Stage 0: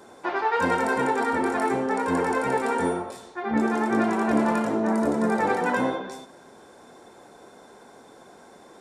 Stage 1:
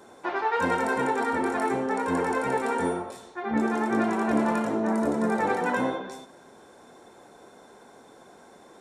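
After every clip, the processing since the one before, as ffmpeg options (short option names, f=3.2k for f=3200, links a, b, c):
-af "bandreject=f=4.8k:w=17,volume=-2dB"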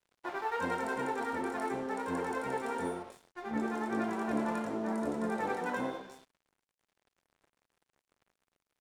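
-af "aeval=exprs='sgn(val(0))*max(abs(val(0))-0.00596,0)':c=same,volume=-8dB"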